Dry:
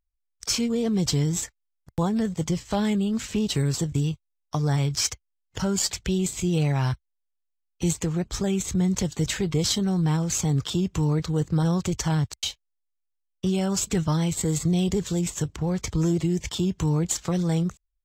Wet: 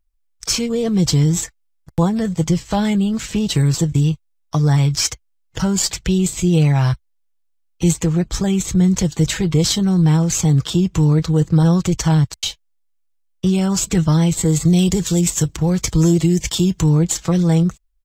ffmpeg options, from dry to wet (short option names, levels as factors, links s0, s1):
-filter_complex "[0:a]asettb=1/sr,asplit=3[s0][s1][s2];[s0]atrim=end=14.654[s3];[s1]atrim=start=14.65:end=16.81,asetpts=PTS-STARTPTS,afade=t=in:d=0.004:c=qsin,afade=t=out:st=2.156:d=0.004:c=qsin,highshelf=f=4300:g=8.5[s4];[s2]atrim=start=16.806[s5];[s3][s4]acrossfade=d=0.004:c1=hsin:c2=qsin[s6];[s6][s5]acrossfade=d=0.004:c1=qsin:c2=hsin,lowshelf=f=84:g=6,aecho=1:1:6.1:0.38,volume=1.88"